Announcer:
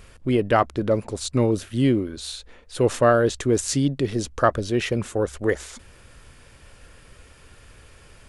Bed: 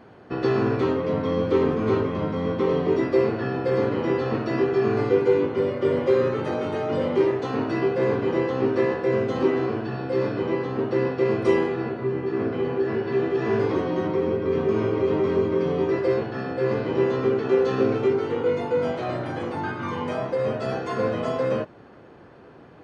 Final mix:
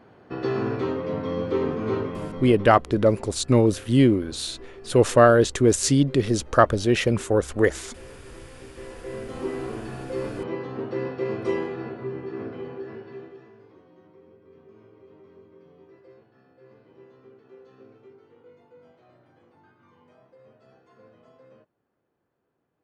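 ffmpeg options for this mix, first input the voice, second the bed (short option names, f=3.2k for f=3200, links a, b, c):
-filter_complex "[0:a]adelay=2150,volume=2.5dB[a];[1:a]volume=13.5dB,afade=t=out:st=2.03:d=0.75:silence=0.105925,afade=t=in:st=8.73:d=1.09:silence=0.133352,afade=t=out:st=12.02:d=1.5:silence=0.0668344[b];[a][b]amix=inputs=2:normalize=0"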